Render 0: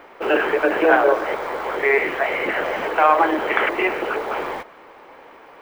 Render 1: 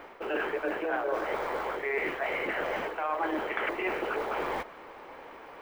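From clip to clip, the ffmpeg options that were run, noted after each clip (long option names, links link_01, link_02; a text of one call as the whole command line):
ffmpeg -i in.wav -af "lowshelf=frequency=99:gain=5.5,areverse,acompressor=threshold=-26dB:ratio=6,areverse,volume=-2.5dB" out.wav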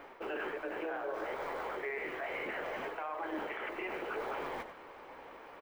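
ffmpeg -i in.wav -filter_complex "[0:a]asplit=2[link_01][link_02];[link_02]adelay=93.29,volume=-14dB,highshelf=frequency=4000:gain=-2.1[link_03];[link_01][link_03]amix=inputs=2:normalize=0,alimiter=level_in=1dB:limit=-24dB:level=0:latency=1:release=125,volume=-1dB,flanger=delay=7.1:depth=8.8:regen=74:speed=0.68:shape=sinusoidal" out.wav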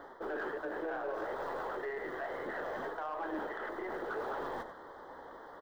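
ffmpeg -i in.wav -af "asuperstop=centerf=2500:order=8:qfactor=2,highshelf=frequency=5300:gain=-6.5,aeval=exprs='0.0422*(cos(1*acos(clip(val(0)/0.0422,-1,1)))-cos(1*PI/2))+0.0015*(cos(4*acos(clip(val(0)/0.0422,-1,1)))-cos(4*PI/2))+0.00188*(cos(5*acos(clip(val(0)/0.0422,-1,1)))-cos(5*PI/2))+0.00106*(cos(6*acos(clip(val(0)/0.0422,-1,1)))-cos(6*PI/2))+0.000841*(cos(8*acos(clip(val(0)/0.0422,-1,1)))-cos(8*PI/2))':channel_layout=same" out.wav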